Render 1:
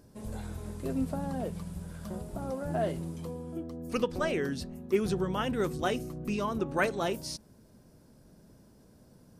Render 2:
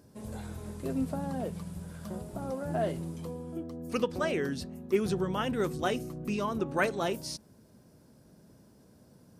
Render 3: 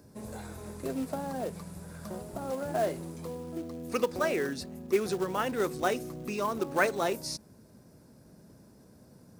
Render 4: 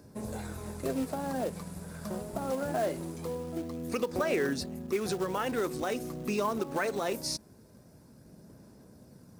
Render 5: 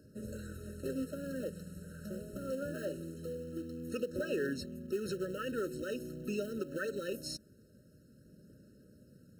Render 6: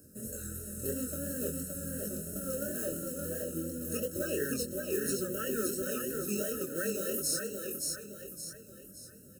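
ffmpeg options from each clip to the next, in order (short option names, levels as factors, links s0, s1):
-af "highpass=70"
-filter_complex "[0:a]equalizer=f=3100:w=5.8:g=-10,acrossover=split=290|3000[s0][s1][s2];[s0]acompressor=threshold=0.00562:ratio=6[s3];[s1]acrusher=bits=4:mode=log:mix=0:aa=0.000001[s4];[s3][s4][s2]amix=inputs=3:normalize=0,volume=1.33"
-filter_complex "[0:a]asplit=2[s0][s1];[s1]aeval=exprs='sgn(val(0))*max(abs(val(0))-0.00335,0)':c=same,volume=0.398[s2];[s0][s2]amix=inputs=2:normalize=0,alimiter=limit=0.0891:level=0:latency=1:release=133,aphaser=in_gain=1:out_gain=1:delay=4.7:decay=0.2:speed=0.23:type=sinusoidal"
-af "afftfilt=real='re*eq(mod(floor(b*sr/1024/630),2),0)':imag='im*eq(mod(floor(b*sr/1024/630),2),0)':win_size=1024:overlap=0.75,volume=0.562"
-filter_complex "[0:a]asplit=2[s0][s1];[s1]aecho=0:1:569|1138|1707|2276|2845:0.668|0.281|0.118|0.0495|0.0208[s2];[s0][s2]amix=inputs=2:normalize=0,flanger=delay=20:depth=5.1:speed=2.9,aexciter=amount=8.7:drive=2.8:freq=6300,volume=1.5"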